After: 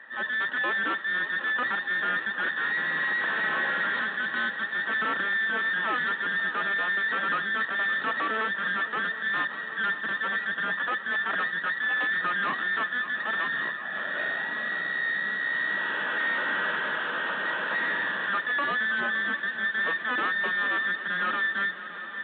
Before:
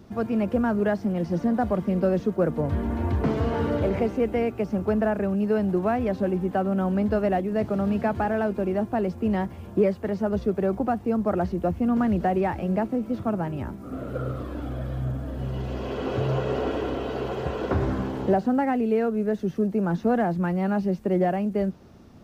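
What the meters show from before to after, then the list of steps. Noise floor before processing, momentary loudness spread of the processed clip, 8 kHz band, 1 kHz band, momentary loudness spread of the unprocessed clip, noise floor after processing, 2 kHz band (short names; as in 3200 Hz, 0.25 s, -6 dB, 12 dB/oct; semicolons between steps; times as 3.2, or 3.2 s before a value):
-42 dBFS, 3 LU, n/a, -1.0 dB, 7 LU, -37 dBFS, +16.5 dB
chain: band inversion scrambler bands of 2000 Hz; in parallel at -6.5 dB: wavefolder -25.5 dBFS; on the sum: transient shaper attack -7 dB, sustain -1 dB; bell 1500 Hz -6.5 dB 0.67 oct; notch 730 Hz, Q 12; tube stage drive 30 dB, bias 0.65; steep high-pass 170 Hz 36 dB/oct; air absorption 99 m; on a send: swung echo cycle 0.753 s, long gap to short 3:1, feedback 65%, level -14 dB; on the sum: downsampling 8000 Hz; gain +6.5 dB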